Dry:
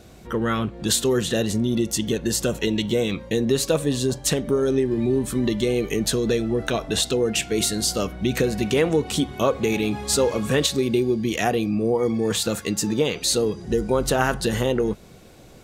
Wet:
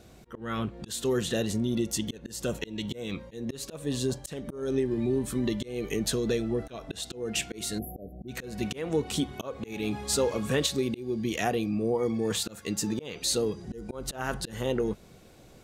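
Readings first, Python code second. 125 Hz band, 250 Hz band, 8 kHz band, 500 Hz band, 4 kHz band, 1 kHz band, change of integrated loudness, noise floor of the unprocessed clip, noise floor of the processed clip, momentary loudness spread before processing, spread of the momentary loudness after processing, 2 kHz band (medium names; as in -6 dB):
-8.0 dB, -7.5 dB, -8.5 dB, -9.0 dB, -8.5 dB, -9.0 dB, -8.5 dB, -46 dBFS, -53 dBFS, 4 LU, 10 LU, -9.0 dB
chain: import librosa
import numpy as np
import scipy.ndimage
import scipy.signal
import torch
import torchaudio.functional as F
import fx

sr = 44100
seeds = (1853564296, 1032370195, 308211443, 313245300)

y = fx.spec_erase(x, sr, start_s=7.79, length_s=0.49, low_hz=770.0, high_hz=11000.0)
y = fx.auto_swell(y, sr, attack_ms=245.0)
y = y * 10.0 ** (-6.0 / 20.0)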